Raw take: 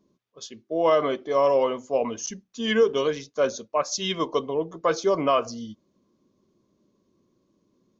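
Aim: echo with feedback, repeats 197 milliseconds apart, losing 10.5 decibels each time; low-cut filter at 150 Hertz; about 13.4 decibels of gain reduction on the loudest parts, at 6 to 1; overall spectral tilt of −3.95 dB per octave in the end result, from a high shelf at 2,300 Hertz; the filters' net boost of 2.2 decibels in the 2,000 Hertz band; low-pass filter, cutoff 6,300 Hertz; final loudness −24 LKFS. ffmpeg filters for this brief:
ffmpeg -i in.wav -af "highpass=150,lowpass=6300,equalizer=frequency=2000:width_type=o:gain=6.5,highshelf=frequency=2300:gain=-7.5,acompressor=threshold=-30dB:ratio=6,aecho=1:1:197|394|591:0.299|0.0896|0.0269,volume=10.5dB" out.wav

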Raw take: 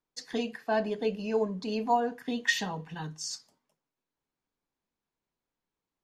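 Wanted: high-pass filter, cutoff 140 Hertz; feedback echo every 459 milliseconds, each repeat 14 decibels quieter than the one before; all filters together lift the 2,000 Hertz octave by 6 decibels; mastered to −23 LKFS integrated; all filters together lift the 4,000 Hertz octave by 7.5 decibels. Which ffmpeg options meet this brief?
ffmpeg -i in.wav -af "highpass=140,equalizer=frequency=2000:width_type=o:gain=5,equalizer=frequency=4000:width_type=o:gain=8,aecho=1:1:459|918:0.2|0.0399,volume=5.5dB" out.wav

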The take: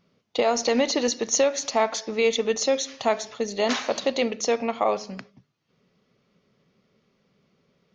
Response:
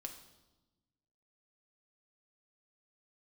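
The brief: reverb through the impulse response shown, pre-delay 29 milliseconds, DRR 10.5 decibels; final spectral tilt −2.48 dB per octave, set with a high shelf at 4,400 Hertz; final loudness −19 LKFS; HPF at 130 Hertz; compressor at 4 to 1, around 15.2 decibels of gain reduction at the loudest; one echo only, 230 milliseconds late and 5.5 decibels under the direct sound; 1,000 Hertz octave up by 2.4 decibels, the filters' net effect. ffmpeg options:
-filter_complex "[0:a]highpass=130,equalizer=frequency=1000:width_type=o:gain=3.5,highshelf=frequency=4400:gain=-6,acompressor=threshold=-35dB:ratio=4,aecho=1:1:230:0.531,asplit=2[link_01][link_02];[1:a]atrim=start_sample=2205,adelay=29[link_03];[link_02][link_03]afir=irnorm=-1:irlink=0,volume=-7dB[link_04];[link_01][link_04]amix=inputs=2:normalize=0,volume=17dB"

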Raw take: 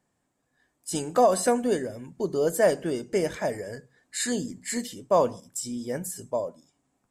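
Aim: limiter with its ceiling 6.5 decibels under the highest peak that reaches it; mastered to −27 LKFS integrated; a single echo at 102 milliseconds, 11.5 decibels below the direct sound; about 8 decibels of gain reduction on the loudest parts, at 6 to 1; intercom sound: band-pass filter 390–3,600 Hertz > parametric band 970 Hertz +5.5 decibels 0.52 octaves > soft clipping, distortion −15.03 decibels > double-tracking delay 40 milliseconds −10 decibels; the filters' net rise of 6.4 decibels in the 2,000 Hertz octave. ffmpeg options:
ffmpeg -i in.wav -filter_complex "[0:a]equalizer=frequency=2000:width_type=o:gain=7.5,acompressor=threshold=-23dB:ratio=6,alimiter=limit=-20.5dB:level=0:latency=1,highpass=390,lowpass=3600,equalizer=frequency=970:width_type=o:width=0.52:gain=5.5,aecho=1:1:102:0.266,asoftclip=threshold=-25.5dB,asplit=2[link_01][link_02];[link_02]adelay=40,volume=-10dB[link_03];[link_01][link_03]amix=inputs=2:normalize=0,volume=8.5dB" out.wav

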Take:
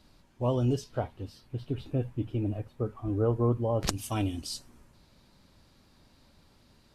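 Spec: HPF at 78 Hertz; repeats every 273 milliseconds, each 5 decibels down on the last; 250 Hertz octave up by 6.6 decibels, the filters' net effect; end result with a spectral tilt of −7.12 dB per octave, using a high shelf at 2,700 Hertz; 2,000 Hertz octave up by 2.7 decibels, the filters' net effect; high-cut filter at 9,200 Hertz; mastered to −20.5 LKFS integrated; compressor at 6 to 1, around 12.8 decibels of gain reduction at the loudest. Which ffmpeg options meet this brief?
ffmpeg -i in.wav -af "highpass=78,lowpass=9200,equalizer=frequency=250:width_type=o:gain=8,equalizer=frequency=2000:width_type=o:gain=6,highshelf=frequency=2700:gain=-5.5,acompressor=threshold=-32dB:ratio=6,aecho=1:1:273|546|819|1092|1365|1638|1911:0.562|0.315|0.176|0.0988|0.0553|0.031|0.0173,volume=16dB" out.wav

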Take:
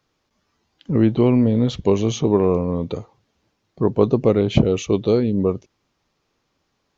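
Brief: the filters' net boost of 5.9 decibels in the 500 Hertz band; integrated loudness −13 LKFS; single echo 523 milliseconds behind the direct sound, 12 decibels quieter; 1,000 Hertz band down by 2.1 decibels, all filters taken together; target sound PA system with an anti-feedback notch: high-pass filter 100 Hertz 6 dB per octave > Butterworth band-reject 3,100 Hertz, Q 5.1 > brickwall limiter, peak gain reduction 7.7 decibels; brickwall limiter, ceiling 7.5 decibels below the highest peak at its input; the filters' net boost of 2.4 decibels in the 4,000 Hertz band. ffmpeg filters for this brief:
ffmpeg -i in.wav -af "equalizer=frequency=500:width_type=o:gain=8.5,equalizer=frequency=1000:width_type=o:gain=-6,equalizer=frequency=4000:width_type=o:gain=7.5,alimiter=limit=-6dB:level=0:latency=1,highpass=frequency=100:poles=1,asuperstop=centerf=3100:order=8:qfactor=5.1,aecho=1:1:523:0.251,volume=9dB,alimiter=limit=-3dB:level=0:latency=1" out.wav

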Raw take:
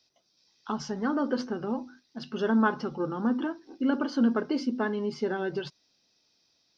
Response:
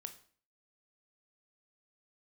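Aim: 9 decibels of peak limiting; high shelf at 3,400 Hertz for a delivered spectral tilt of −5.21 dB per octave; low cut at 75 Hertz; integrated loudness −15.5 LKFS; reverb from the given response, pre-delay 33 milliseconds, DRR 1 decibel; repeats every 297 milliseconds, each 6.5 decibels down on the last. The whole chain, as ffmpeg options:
-filter_complex "[0:a]highpass=75,highshelf=frequency=3400:gain=-3,alimiter=limit=-22.5dB:level=0:latency=1,aecho=1:1:297|594|891|1188|1485|1782:0.473|0.222|0.105|0.0491|0.0231|0.0109,asplit=2[link_01][link_02];[1:a]atrim=start_sample=2205,adelay=33[link_03];[link_02][link_03]afir=irnorm=-1:irlink=0,volume=3.5dB[link_04];[link_01][link_04]amix=inputs=2:normalize=0,volume=14.5dB"

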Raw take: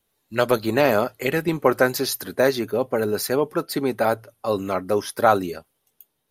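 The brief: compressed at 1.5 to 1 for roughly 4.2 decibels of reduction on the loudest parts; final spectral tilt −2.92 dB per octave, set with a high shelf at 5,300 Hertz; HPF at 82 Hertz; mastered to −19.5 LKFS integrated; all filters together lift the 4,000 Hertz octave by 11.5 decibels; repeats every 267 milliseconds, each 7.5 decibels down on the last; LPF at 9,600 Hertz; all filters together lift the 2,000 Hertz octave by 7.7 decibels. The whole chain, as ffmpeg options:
ffmpeg -i in.wav -af "highpass=82,lowpass=9600,equalizer=frequency=2000:width_type=o:gain=7.5,equalizer=frequency=4000:width_type=o:gain=8.5,highshelf=frequency=5300:gain=8,acompressor=threshold=-21dB:ratio=1.5,aecho=1:1:267|534|801|1068|1335:0.422|0.177|0.0744|0.0312|0.0131,volume=2dB" out.wav

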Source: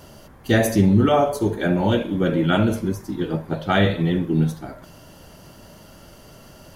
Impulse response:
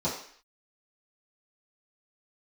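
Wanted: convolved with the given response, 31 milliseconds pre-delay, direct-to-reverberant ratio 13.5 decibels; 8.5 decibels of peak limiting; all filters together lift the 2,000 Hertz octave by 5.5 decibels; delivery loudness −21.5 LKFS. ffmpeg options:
-filter_complex "[0:a]equalizer=frequency=2000:width_type=o:gain=7,alimiter=limit=-11.5dB:level=0:latency=1,asplit=2[link_01][link_02];[1:a]atrim=start_sample=2205,adelay=31[link_03];[link_02][link_03]afir=irnorm=-1:irlink=0,volume=-22.5dB[link_04];[link_01][link_04]amix=inputs=2:normalize=0"

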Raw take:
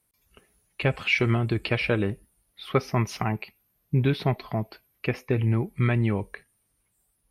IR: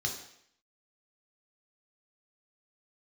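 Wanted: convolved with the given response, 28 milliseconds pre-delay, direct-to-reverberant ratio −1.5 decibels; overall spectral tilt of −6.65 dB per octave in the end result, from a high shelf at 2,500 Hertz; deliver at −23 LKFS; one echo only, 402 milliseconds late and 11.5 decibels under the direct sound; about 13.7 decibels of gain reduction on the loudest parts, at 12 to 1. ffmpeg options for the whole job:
-filter_complex "[0:a]highshelf=frequency=2500:gain=-7.5,acompressor=threshold=-32dB:ratio=12,aecho=1:1:402:0.266,asplit=2[link_01][link_02];[1:a]atrim=start_sample=2205,adelay=28[link_03];[link_02][link_03]afir=irnorm=-1:irlink=0,volume=-2.5dB[link_04];[link_01][link_04]amix=inputs=2:normalize=0,volume=7dB"

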